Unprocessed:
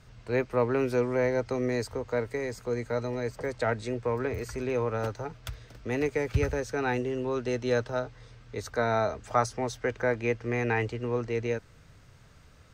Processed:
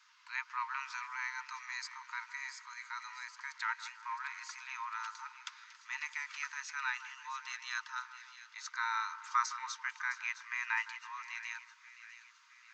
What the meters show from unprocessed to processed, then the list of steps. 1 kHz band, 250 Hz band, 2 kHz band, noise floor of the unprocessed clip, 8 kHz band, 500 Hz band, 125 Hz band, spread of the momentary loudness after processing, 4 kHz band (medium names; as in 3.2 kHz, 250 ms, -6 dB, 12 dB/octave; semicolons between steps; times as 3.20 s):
-5.0 dB, under -40 dB, -2.0 dB, -55 dBFS, -2.0 dB, under -40 dB, under -40 dB, 14 LU, -1.5 dB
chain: Chebyshev high-pass 910 Hz, order 10; two-band feedback delay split 1.7 kHz, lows 162 ms, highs 662 ms, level -13 dB; resampled via 16 kHz; trim -1.5 dB